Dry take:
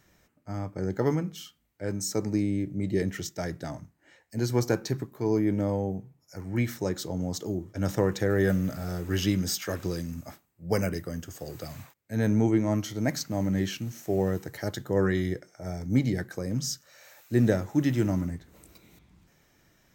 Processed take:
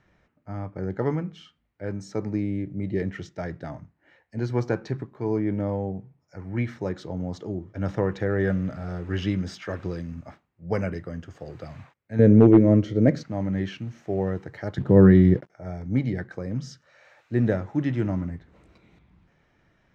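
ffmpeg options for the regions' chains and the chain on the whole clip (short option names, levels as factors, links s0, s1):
-filter_complex "[0:a]asettb=1/sr,asplit=3[s0][s1][s2];[s0]atrim=end=12.194[s3];[s1]atrim=start=12.19:end=13.23,asetpts=PTS-STARTPTS,afade=t=in:d=0.004:c=qsin,afade=t=out:st=1.036:d=0.004:c=qsin,lowshelf=f=640:t=q:w=3:g=8,asoftclip=type=hard:threshold=0.501[s4];[s2]atrim=start=13.226[s5];[s3][s4]acrossfade=d=0.004:c1=hsin:c2=qsin[s6];[s6][s5]acrossfade=d=0.004:c1=qsin:c2=hsin,asettb=1/sr,asplit=3[s7][s8][s9];[s7]atrim=end=14.784[s10];[s8]atrim=start=14.78:end=15.5,asetpts=PTS-STARTPTS,afade=t=in:d=0.004:c=qsin,afade=t=out:st=0.716:d=0.004:c=qsin,acrusher=bits=7:mix=0:aa=0.5,equalizer=f=170:t=o:w=3:g=14.5[s11];[s9]atrim=start=15.496[s12];[s10][s11]acrossfade=d=0.004:c1=hsin:c2=qsin[s13];[s13][s12]acrossfade=d=0.004:c1=qsin:c2=hsin,lowpass=2600,equalizer=f=310:w=1.5:g=-2,volume=1.12"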